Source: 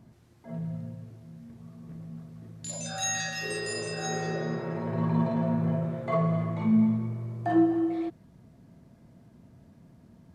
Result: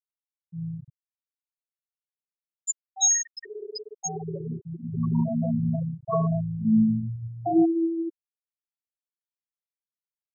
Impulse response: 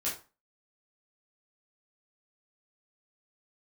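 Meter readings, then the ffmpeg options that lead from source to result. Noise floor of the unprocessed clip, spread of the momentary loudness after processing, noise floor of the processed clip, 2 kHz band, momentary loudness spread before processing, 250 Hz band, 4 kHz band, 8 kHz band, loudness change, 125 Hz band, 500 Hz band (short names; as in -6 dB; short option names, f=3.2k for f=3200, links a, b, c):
-58 dBFS, 16 LU, under -85 dBFS, -12.5 dB, 21 LU, +2.0 dB, -1.0 dB, +9.5 dB, +2.5 dB, +1.0 dB, 0.0 dB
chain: -af "afftfilt=real='re*gte(hypot(re,im),0.158)':imag='im*gte(hypot(re,im),0.158)':win_size=1024:overlap=0.75,aemphasis=mode=production:type=75fm,volume=3dB"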